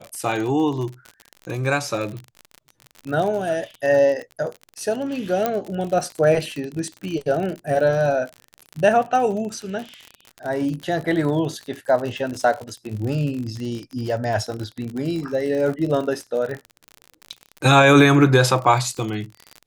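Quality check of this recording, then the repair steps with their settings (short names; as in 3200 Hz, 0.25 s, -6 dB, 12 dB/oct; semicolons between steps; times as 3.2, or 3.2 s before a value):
crackle 49/s -27 dBFS
5.46 pop -7 dBFS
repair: de-click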